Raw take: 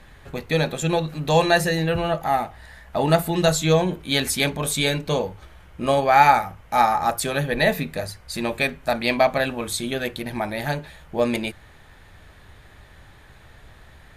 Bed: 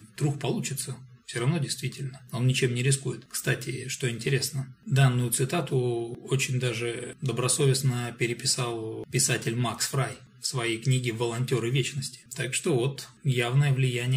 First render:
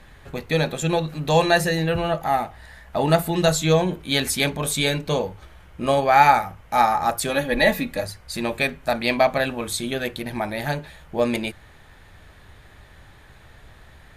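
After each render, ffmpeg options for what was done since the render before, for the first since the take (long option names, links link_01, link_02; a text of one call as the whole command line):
ffmpeg -i in.wav -filter_complex "[0:a]asettb=1/sr,asplit=3[link_01][link_02][link_03];[link_01]atrim=end=7.294[link_04];[link_02]atrim=start=7.29:end=8.04,asetpts=PTS-STARTPTS,afade=type=in:duration=0.004:curve=qsin,afade=type=out:start_time=0.746:duration=0.004:curve=qsin,aecho=1:1:3.6:0.64,atrim=end_sample=33075[link_05];[link_03]atrim=start=8.036[link_06];[link_04][link_05]acrossfade=duration=0.004:curve1=hsin:curve2=qsin[link_07];[link_07][link_06]acrossfade=duration=0.004:curve1=qsin:curve2=hsin" out.wav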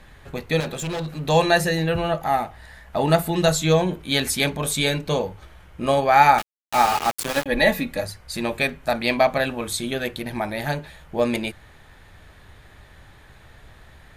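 ffmpeg -i in.wav -filter_complex "[0:a]asettb=1/sr,asplit=3[link_01][link_02][link_03];[link_01]atrim=end=0.604[link_04];[link_02]atrim=start=0.6:end=1.26,asetpts=PTS-STARTPTS,afade=type=in:duration=0.004:curve=qsin,afade=type=out:start_time=0.656:duration=0.004:curve=qsin,volume=25dB,asoftclip=hard,volume=-25dB[link_05];[link_03]atrim=start=1.256[link_06];[link_04][link_05]acrossfade=duration=0.004:curve1=hsin:curve2=qsin[link_07];[link_07][link_06]acrossfade=duration=0.004:curve1=qsin:curve2=hsin,asettb=1/sr,asplit=3[link_08][link_09][link_10];[link_08]atrim=end=6.384[link_11];[link_09]atrim=start=6.38:end=7.46,asetpts=PTS-STARTPTS,afade=type=in:duration=0.004:curve=qsin,afade=type=out:start_time=1.076:duration=0.004:curve=qsin,aeval=exprs='val(0)*gte(abs(val(0)),0.0841)':channel_layout=same[link_12];[link_10]atrim=start=7.456[link_13];[link_11][link_12]acrossfade=duration=0.004:curve1=hsin:curve2=qsin[link_14];[link_14][link_13]acrossfade=duration=0.004:curve1=qsin:curve2=hsin" out.wav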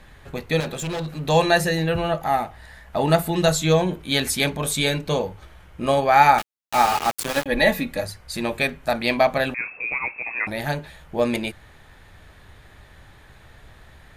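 ffmpeg -i in.wav -filter_complex "[0:a]asettb=1/sr,asplit=3[link_01][link_02][link_03];[link_01]atrim=end=9.544[link_04];[link_02]atrim=start=9.54:end=10.47,asetpts=PTS-STARTPTS,afade=type=in:duration=0.004:curve=qsin,afade=type=out:start_time=0.926:duration=0.004:curve=qsin,lowpass=frequency=2300:width_type=q:width=0.5098,lowpass=frequency=2300:width_type=q:width=0.6013,lowpass=frequency=2300:width_type=q:width=0.9,lowpass=frequency=2300:width_type=q:width=2.563,afreqshift=-2700[link_05];[link_03]atrim=start=10.466[link_06];[link_04][link_05]acrossfade=duration=0.004:curve1=hsin:curve2=qsin[link_07];[link_07][link_06]acrossfade=duration=0.004:curve1=qsin:curve2=hsin" out.wav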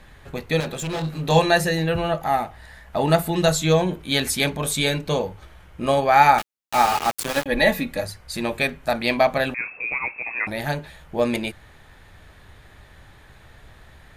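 ffmpeg -i in.wav -filter_complex "[0:a]asettb=1/sr,asplit=3[link_01][link_02][link_03];[link_01]atrim=end=0.914[link_04];[link_02]atrim=start=0.91:end=1.39,asetpts=PTS-STARTPTS,afade=type=in:duration=0.004:curve=qsin,afade=type=out:start_time=0.476:duration=0.004:curve=qsin,asplit=2[link_05][link_06];[link_06]adelay=25,volume=-4.5dB[link_07];[link_05][link_07]amix=inputs=2:normalize=0,atrim=end_sample=21168[link_08];[link_03]atrim=start=1.386[link_09];[link_04][link_08]acrossfade=duration=0.004:curve1=hsin:curve2=qsin[link_10];[link_10][link_09]acrossfade=duration=0.004:curve1=qsin:curve2=hsin" out.wav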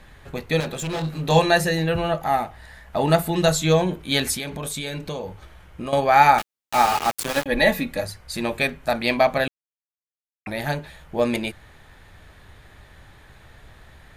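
ffmpeg -i in.wav -filter_complex "[0:a]asettb=1/sr,asplit=3[link_01][link_02][link_03];[link_01]atrim=end=4.344[link_04];[link_02]atrim=start=4.34:end=5.93,asetpts=PTS-STARTPTS,afade=type=in:duration=0.004:curve=qsin,afade=type=out:start_time=1.586:duration=0.004:curve=qsin,acompressor=threshold=-26dB:ratio=6:attack=3.2:release=140:knee=1:detection=peak[link_05];[link_03]atrim=start=5.926[link_06];[link_04][link_05]acrossfade=duration=0.004:curve1=hsin:curve2=qsin[link_07];[link_07][link_06]acrossfade=duration=0.004:curve1=qsin:curve2=hsin,asplit=3[link_08][link_09][link_10];[link_08]atrim=end=9.48,asetpts=PTS-STARTPTS,afade=type=out:start_time=9.476:duration=0.004:curve=hsin[link_11];[link_09]atrim=start=9.48:end=10.46,asetpts=PTS-STARTPTS,volume=0[link_12];[link_10]atrim=start=10.46,asetpts=PTS-STARTPTS,afade=type=in:duration=0.004:curve=hsin[link_13];[link_11][link_12][link_13]concat=n=3:v=0:a=1" out.wav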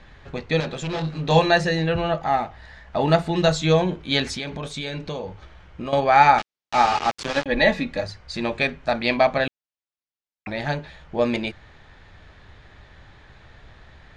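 ffmpeg -i in.wav -af "lowpass=frequency=6000:width=0.5412,lowpass=frequency=6000:width=1.3066" out.wav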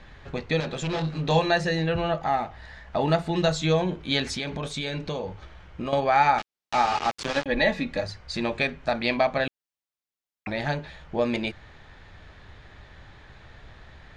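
ffmpeg -i in.wav -af "acompressor=threshold=-26dB:ratio=1.5" out.wav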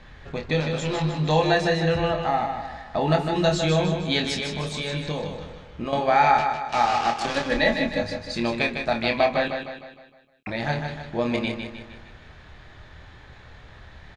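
ffmpeg -i in.wav -filter_complex "[0:a]asplit=2[link_01][link_02];[link_02]adelay=26,volume=-6dB[link_03];[link_01][link_03]amix=inputs=2:normalize=0,asplit=2[link_04][link_05];[link_05]aecho=0:1:154|308|462|616|770|924:0.473|0.222|0.105|0.0491|0.0231|0.0109[link_06];[link_04][link_06]amix=inputs=2:normalize=0" out.wav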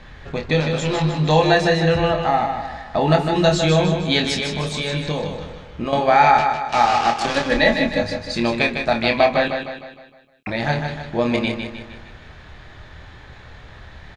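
ffmpeg -i in.wav -af "volume=5dB,alimiter=limit=-2dB:level=0:latency=1" out.wav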